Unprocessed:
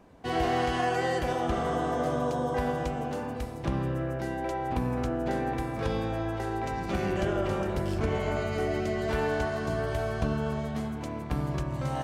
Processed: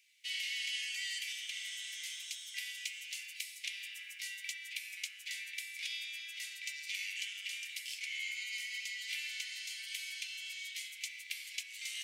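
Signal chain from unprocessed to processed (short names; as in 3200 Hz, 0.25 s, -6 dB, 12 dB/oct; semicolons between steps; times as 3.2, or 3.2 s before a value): Chebyshev high-pass 2100 Hz, order 6; in parallel at +1.5 dB: vocal rider 0.5 s; on the sum: gain -1 dB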